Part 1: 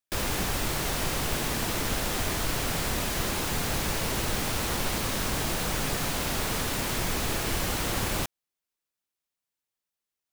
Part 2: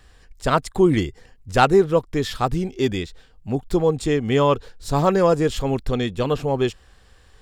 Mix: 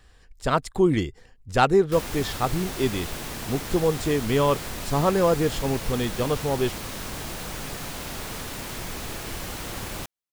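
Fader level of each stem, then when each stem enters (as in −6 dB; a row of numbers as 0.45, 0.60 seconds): −5.0, −3.5 decibels; 1.80, 0.00 seconds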